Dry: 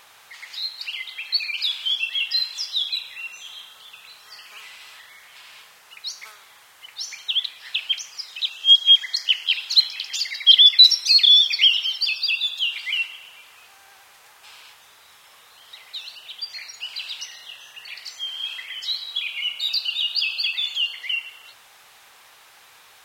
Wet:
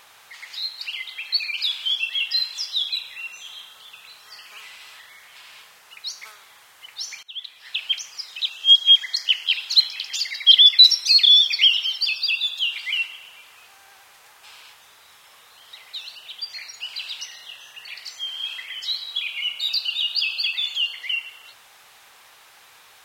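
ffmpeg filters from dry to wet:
ffmpeg -i in.wav -filter_complex "[0:a]asplit=2[link_01][link_02];[link_01]atrim=end=7.23,asetpts=PTS-STARTPTS,afade=type=out:start_time=7.226:duration=0.004:curve=hsin:silence=0.0707946[link_03];[link_02]atrim=start=7.23,asetpts=PTS-STARTPTS,afade=type=in:duration=0.67:silence=0.0707946[link_04];[link_03][link_04]concat=n=2:v=0:a=1" out.wav

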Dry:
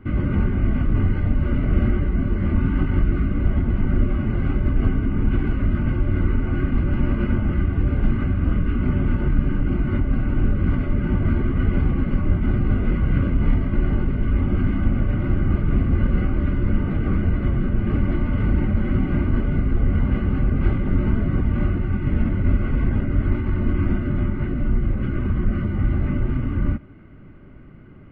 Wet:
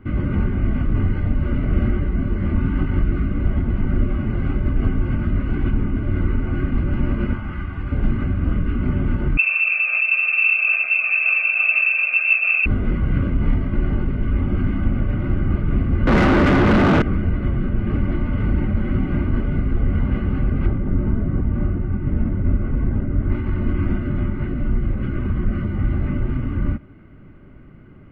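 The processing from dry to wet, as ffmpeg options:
ffmpeg -i in.wav -filter_complex "[0:a]asettb=1/sr,asplit=3[link_01][link_02][link_03];[link_01]atrim=end=7.334[link_04];[link_02]atrim=start=7.33:end=7.92,asetpts=PTS-STARTPTS,afade=type=in:duration=0.004:curve=qsin,afade=type=out:start_time=0.586:duration=0.004:curve=qsin,lowshelf=frequency=720:width_type=q:width=1.5:gain=-7[link_05];[link_03]atrim=start=7.916[link_06];[link_04][link_05]acrossfade=duration=0.004:curve1=hsin:curve2=qsin[link_07];[link_07][link_06]acrossfade=duration=0.004:curve1=qsin:curve2=hsin,asettb=1/sr,asplit=3[link_08][link_09][link_10];[link_08]atrim=end=9.374[link_11];[link_09]atrim=start=9.37:end=12.66,asetpts=PTS-STARTPTS,afade=type=in:duration=0.004:curve=qsin,afade=type=out:start_time=3.286:duration=0.004:curve=qsin,lowpass=frequency=2300:width_type=q:width=0.5098,lowpass=frequency=2300:width_type=q:width=0.6013,lowpass=frequency=2300:width_type=q:width=0.9,lowpass=frequency=2300:width_type=q:width=2.563,afreqshift=-2700[link_12];[link_10]atrim=start=12.656[link_13];[link_11][link_12]acrossfade=duration=0.004:curve1=hsin:curve2=qsin[link_14];[link_14][link_13]acrossfade=duration=0.004:curve1=qsin:curve2=hsin,asettb=1/sr,asplit=3[link_15][link_16][link_17];[link_15]atrim=end=16.074[link_18];[link_16]atrim=start=16.07:end=17.02,asetpts=PTS-STARTPTS,afade=type=in:duration=0.004:curve=qsin,afade=type=out:start_time=0.946:duration=0.004:curve=qsin,asplit=2[link_19][link_20];[link_20]highpass=frequency=720:poles=1,volume=38dB,asoftclip=type=tanh:threshold=-6.5dB[link_21];[link_19][link_21]amix=inputs=2:normalize=0,lowpass=frequency=1400:poles=1,volume=-6dB[link_22];[link_17]atrim=start=17.016[link_23];[link_18][link_22]acrossfade=duration=0.004:curve1=hsin:curve2=qsin[link_24];[link_24][link_23]acrossfade=duration=0.004:curve1=qsin:curve2=hsin,asettb=1/sr,asplit=3[link_25][link_26][link_27];[link_25]atrim=end=20.664[link_28];[link_26]atrim=start=20.66:end=23.3,asetpts=PTS-STARTPTS,afade=type=in:duration=0.004:curve=qsin,afade=type=out:start_time=2.636:duration=0.004:curve=qsin,lowpass=frequency=1000:poles=1[link_29];[link_27]atrim=start=23.296[link_30];[link_28][link_29]acrossfade=duration=0.004:curve1=hsin:curve2=qsin[link_31];[link_31][link_30]acrossfade=duration=0.004:curve1=qsin:curve2=hsin,asplit=3[link_32][link_33][link_34];[link_32]atrim=end=4.992[link_35];[link_33]atrim=start=4.988:end=6.032,asetpts=PTS-STARTPTS,areverse[link_36];[link_34]atrim=start=6.028[link_37];[link_35][link_36]acrossfade=duration=0.004:curve1=hsin:curve2=hsin[link_38];[link_38][link_37]acrossfade=duration=0.004:curve1=hsin:curve2=hsin" out.wav

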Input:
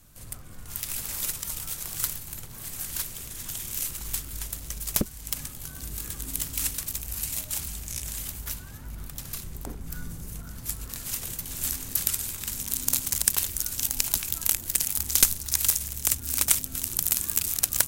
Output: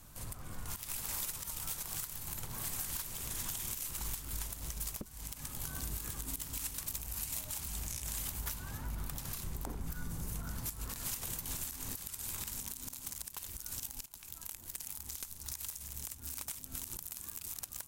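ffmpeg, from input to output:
ffmpeg -i in.wav -filter_complex "[0:a]asplit=2[link_01][link_02];[link_01]atrim=end=14.06,asetpts=PTS-STARTPTS,afade=type=out:start_time=14.056:duration=0.004:curve=hsin:silence=0.1[link_03];[link_02]atrim=start=14.06,asetpts=PTS-STARTPTS,afade=type=in:duration=3.37:silence=0.1[link_04];[link_03][link_04]concat=n=2:v=0:a=1,equalizer=frequency=940:width=1.9:gain=6,acompressor=threshold=-34dB:ratio=12,alimiter=level_in=0.5dB:limit=-24dB:level=0:latency=1:release=98,volume=-0.5dB" out.wav

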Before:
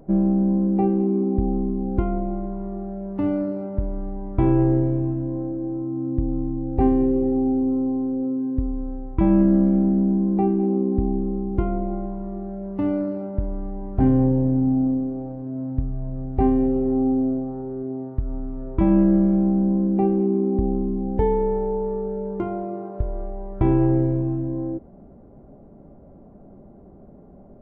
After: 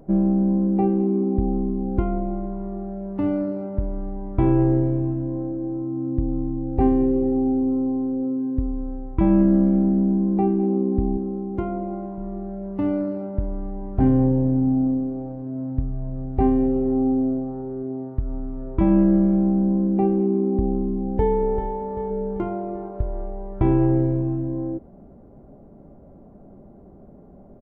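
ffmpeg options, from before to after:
ffmpeg -i in.wav -filter_complex "[0:a]asettb=1/sr,asplit=3[link_01][link_02][link_03];[link_01]atrim=end=11.174[link_04];[link_02]atrim=start=11.17:end=12.18,asetpts=PTS-STARTPTS,afade=type=in:duration=0.004:curve=qsin,afade=type=out:start_time=1.006:duration=0.004:curve=qsin,highpass=frequency=170:poles=1[link_05];[link_03]atrim=start=12.176[link_06];[link_04][link_05]acrossfade=duration=0.004:curve1=hsin:curve2=qsin[link_07];[link_07][link_06]acrossfade=duration=0.004:curve1=qsin:curve2=hsin,asplit=2[link_08][link_09];[link_09]afade=type=in:start_time=21.03:duration=0.01,afade=type=out:start_time=21.71:duration=0.01,aecho=0:1:390|780|1170|1560|1950|2340:0.354813|0.177407|0.0887033|0.0443517|0.0221758|0.0110879[link_10];[link_08][link_10]amix=inputs=2:normalize=0" out.wav

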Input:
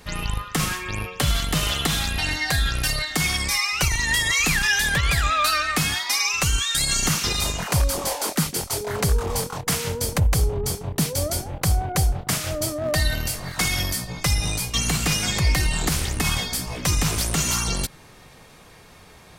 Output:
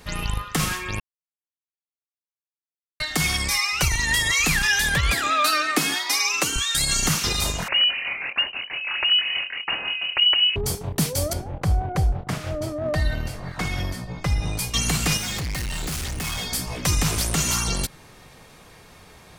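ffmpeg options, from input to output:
ffmpeg -i in.wav -filter_complex "[0:a]asettb=1/sr,asplit=3[link_01][link_02][link_03];[link_01]atrim=end=5.134[link_04];[link_02]atrim=start=5.13:end=6.56,asetpts=PTS-STARTPTS,afade=type=in:duration=0.004:curve=qsin,afade=type=out:start_time=1.426:duration=0.004:curve=qsin,highpass=frequency=300:width_type=q:width=2.6[link_05];[link_03]atrim=start=6.556[link_06];[link_04][link_05]acrossfade=duration=0.004:curve1=hsin:curve2=qsin[link_07];[link_07][link_06]acrossfade=duration=0.004:curve1=qsin:curve2=hsin,asettb=1/sr,asplit=3[link_08][link_09][link_10];[link_08]atrim=end=7.684[link_11];[link_09]atrim=start=7.68:end=10.56,asetpts=PTS-STARTPTS,afade=type=in:duration=0.004:curve=qsin,afade=type=out:start_time=2.876:duration=0.004:curve=qsin,lowpass=frequency=2600:width_type=q:width=0.5098,lowpass=frequency=2600:width_type=q:width=0.6013,lowpass=frequency=2600:width_type=q:width=0.9,lowpass=frequency=2600:width_type=q:width=2.563,afreqshift=-3000[link_12];[link_10]atrim=start=10.556[link_13];[link_11][link_12]acrossfade=duration=0.004:curve1=hsin:curve2=qsin[link_14];[link_14][link_13]acrossfade=duration=0.004:curve1=qsin:curve2=hsin,asettb=1/sr,asplit=3[link_15][link_16][link_17];[link_15]atrim=end=11.334[link_18];[link_16]atrim=start=11.33:end=14.59,asetpts=PTS-STARTPTS,afade=type=in:duration=0.004:curve=qsin,afade=type=out:start_time=3.256:duration=0.004:curve=qsin,lowpass=frequency=1400:poles=1[link_19];[link_17]atrim=start=14.586[link_20];[link_18][link_19]acrossfade=duration=0.004:curve1=hsin:curve2=qsin[link_21];[link_21][link_20]acrossfade=duration=0.004:curve1=qsin:curve2=hsin,asettb=1/sr,asplit=3[link_22][link_23][link_24];[link_22]atrim=end=15.174[link_25];[link_23]atrim=start=15.17:end=16.51,asetpts=PTS-STARTPTS,afade=type=in:duration=0.004:curve=qsin,afade=type=out:start_time=1.336:duration=0.004:curve=qsin,volume=26dB,asoftclip=hard,volume=-26dB[link_26];[link_24]atrim=start=16.506[link_27];[link_25][link_26]acrossfade=duration=0.004:curve1=hsin:curve2=qsin[link_28];[link_28][link_27]acrossfade=duration=0.004:curve1=qsin:curve2=hsin,asplit=3[link_29][link_30][link_31];[link_29]atrim=end=1,asetpts=PTS-STARTPTS,afade=type=out:start_time=0.996:duration=0.004:curve=hsin[link_32];[link_30]atrim=start=1:end=3,asetpts=PTS-STARTPTS,volume=0[link_33];[link_31]atrim=start=3,asetpts=PTS-STARTPTS,afade=type=in:duration=0.004:curve=hsin[link_34];[link_32][link_33][link_34]concat=n=3:v=0:a=1" out.wav

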